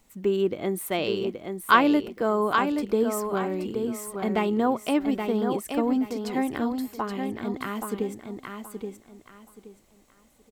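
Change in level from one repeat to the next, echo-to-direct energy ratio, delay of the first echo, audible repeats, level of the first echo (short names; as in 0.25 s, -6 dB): -12.0 dB, -5.5 dB, 0.825 s, 3, -6.0 dB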